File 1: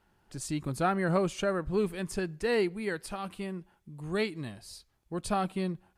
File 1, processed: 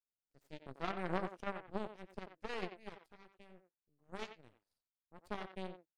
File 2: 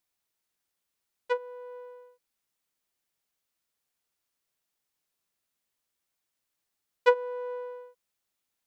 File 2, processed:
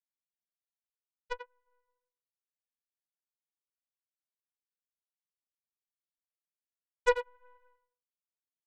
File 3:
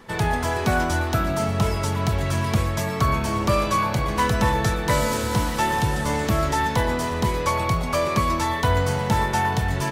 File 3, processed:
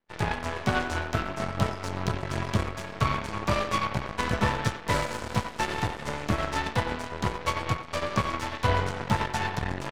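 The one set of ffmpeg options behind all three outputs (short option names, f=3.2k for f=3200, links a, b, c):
-filter_complex "[0:a]flanger=delay=8.1:depth=3.7:regen=-47:speed=1.3:shape=triangular,acrossover=split=2400[a][b];[b]adynamicsmooth=sensitivity=5:basefreq=6.4k[c];[a][c]amix=inputs=2:normalize=0,aeval=exprs='0.282*(cos(1*acos(clip(val(0)/0.282,-1,1)))-cos(1*PI/2))+0.02*(cos(6*acos(clip(val(0)/0.282,-1,1)))-cos(6*PI/2))+0.0398*(cos(7*acos(clip(val(0)/0.282,-1,1)))-cos(7*PI/2))+0.0251*(cos(8*acos(clip(val(0)/0.282,-1,1)))-cos(8*PI/2))':c=same,asplit=2[d][e];[e]adelay=90,highpass=300,lowpass=3.4k,asoftclip=type=hard:threshold=-20dB,volume=-9dB[f];[d][f]amix=inputs=2:normalize=0"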